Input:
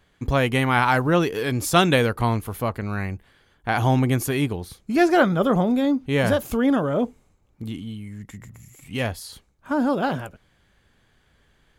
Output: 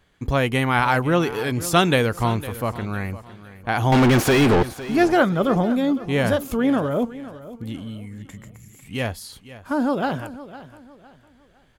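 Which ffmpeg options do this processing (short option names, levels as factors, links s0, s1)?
-filter_complex "[0:a]asettb=1/sr,asplit=3[s0][s1][s2];[s0]atrim=end=3.924[s3];[s1]atrim=start=3.92:end=4.63,asetpts=PTS-STARTPTS,afade=t=in:d=0.004:c=qsin,afade=t=out:st=0.706:d=0.004:c=qsin,asplit=2[s4][s5];[s5]highpass=f=720:p=1,volume=100,asoftclip=type=tanh:threshold=0.376[s6];[s4][s6]amix=inputs=2:normalize=0,lowpass=f=1800:p=1,volume=0.501[s7];[s2]atrim=start=4.626[s8];[s3][s7]acrossfade=d=0.004:c1=hsin:c2=qsin[s9];[s9][s8]acrossfade=d=0.004:c1=qsin:c2=hsin,aecho=1:1:507|1014|1521:0.158|0.0523|0.0173"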